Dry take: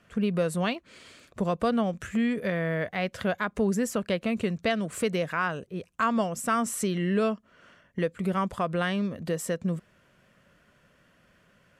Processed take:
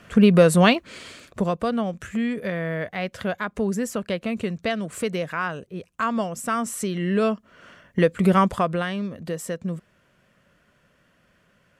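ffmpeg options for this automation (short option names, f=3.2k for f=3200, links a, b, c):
-af "volume=21.5dB,afade=t=out:st=0.75:d=0.85:silence=0.281838,afade=t=in:st=6.93:d=1.4:silence=0.334965,afade=t=out:st=8.33:d=0.53:silence=0.298538"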